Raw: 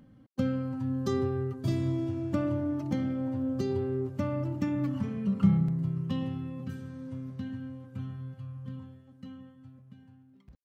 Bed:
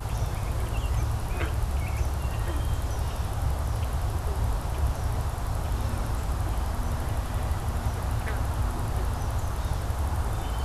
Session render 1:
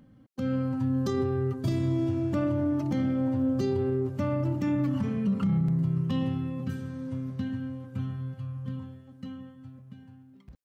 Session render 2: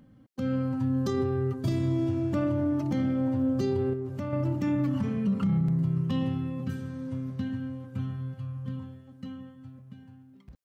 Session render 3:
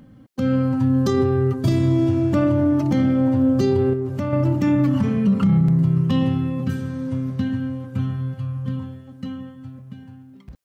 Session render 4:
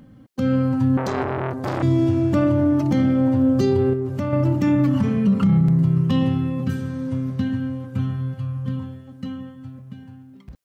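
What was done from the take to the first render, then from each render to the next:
limiter -24.5 dBFS, peak gain reduction 11.5 dB; AGC gain up to 5 dB
3.93–4.33 compressor 3:1, threshold -30 dBFS
gain +9 dB
0.97–1.83 core saturation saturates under 890 Hz

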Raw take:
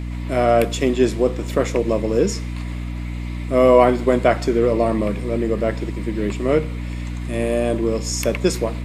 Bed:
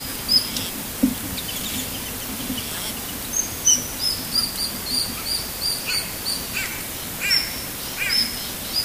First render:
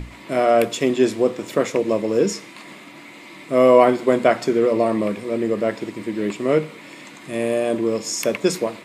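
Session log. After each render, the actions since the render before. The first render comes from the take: notches 60/120/180/240/300 Hz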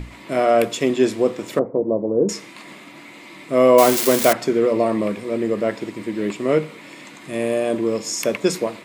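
1.59–2.29 inverse Chebyshev low-pass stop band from 3600 Hz, stop band 70 dB; 3.78–4.33 switching spikes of -8.5 dBFS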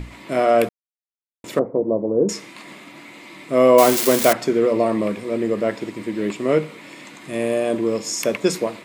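0.69–1.44 mute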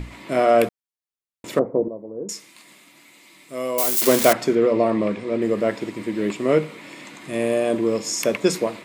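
1.88–4.02 pre-emphasis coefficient 0.8; 4.55–5.42 air absorption 73 m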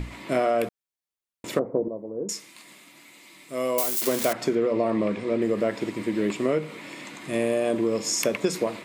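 compressor 12:1, threshold -19 dBFS, peak gain reduction 10 dB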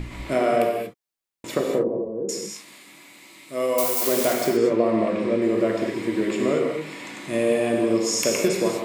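non-linear reverb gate 0.26 s flat, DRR 0 dB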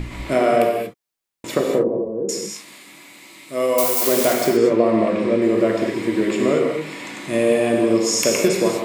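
gain +4 dB

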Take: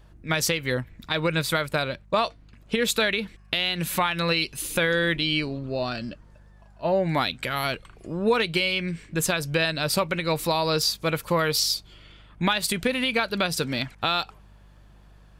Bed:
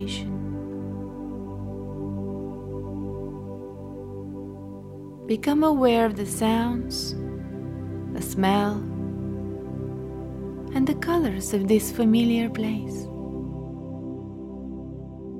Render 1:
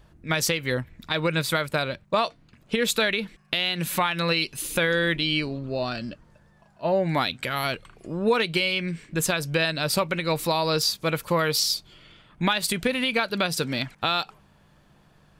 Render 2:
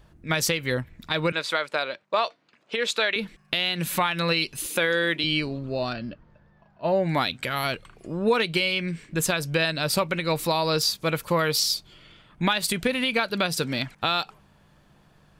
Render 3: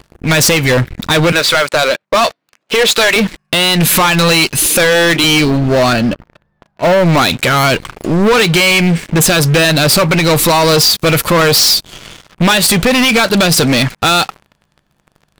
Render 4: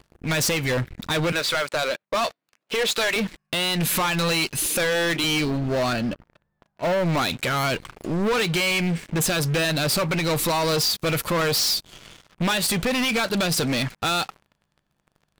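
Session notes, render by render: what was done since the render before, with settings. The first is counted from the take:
de-hum 50 Hz, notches 2
1.32–3.16 BPF 430–5900 Hz; 4.66–5.24 HPF 230 Hz; 5.93–6.84 air absorption 220 m
in parallel at -2 dB: limiter -18.5 dBFS, peak gain reduction 10 dB; on the sum: sample leveller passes 5
gain -12.5 dB

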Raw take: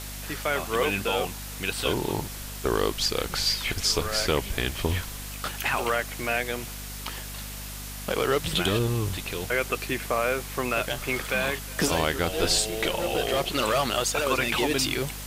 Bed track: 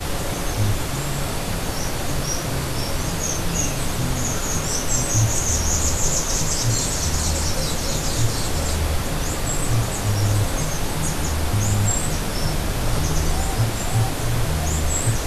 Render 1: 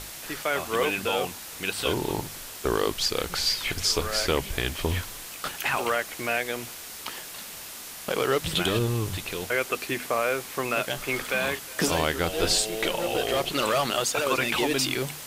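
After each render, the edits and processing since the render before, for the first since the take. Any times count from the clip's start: notches 50/100/150/200/250 Hz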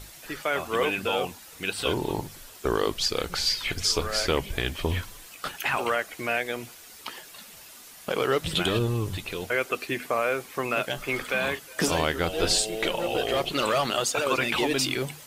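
denoiser 9 dB, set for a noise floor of -40 dBFS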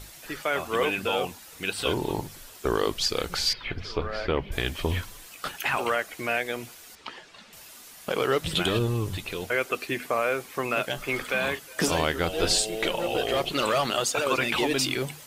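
3.53–4.52 air absorption 350 m; 6.95–7.53 air absorption 120 m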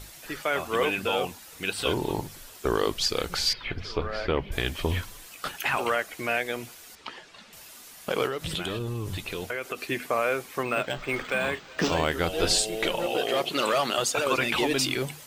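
8.26–9.89 compressor, threshold -27 dBFS; 10.63–12.12 decimation joined by straight lines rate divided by 4×; 13.06–13.98 HPF 180 Hz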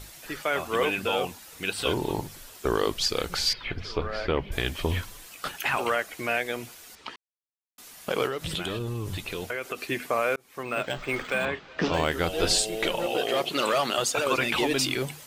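7.16–7.78 mute; 10.36–10.87 fade in; 11.45–11.94 air absorption 140 m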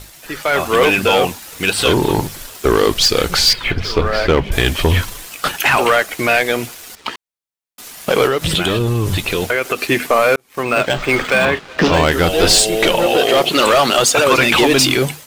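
sample leveller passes 2; AGC gain up to 8 dB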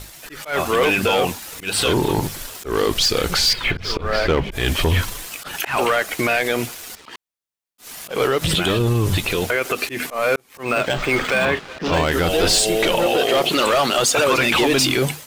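limiter -10.5 dBFS, peak gain reduction 6.5 dB; auto swell 0.141 s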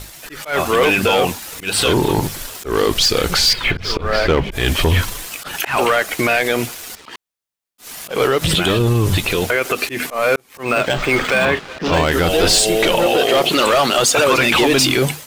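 gain +3 dB

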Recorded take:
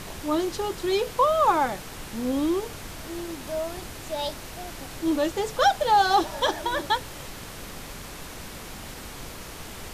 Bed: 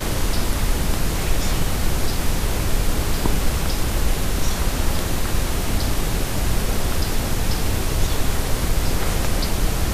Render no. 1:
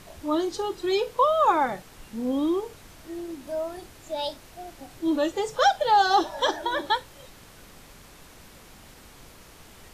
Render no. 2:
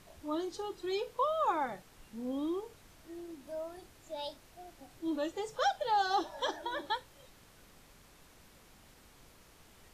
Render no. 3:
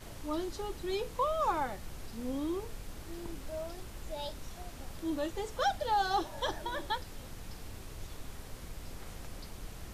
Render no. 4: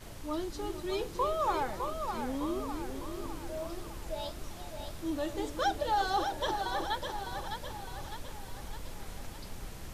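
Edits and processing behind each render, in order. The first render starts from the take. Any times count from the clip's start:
noise print and reduce 10 dB
gain -10.5 dB
add bed -24.5 dB
reverse delay 0.277 s, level -13 dB; split-band echo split 380 Hz, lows 0.311 s, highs 0.607 s, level -6 dB

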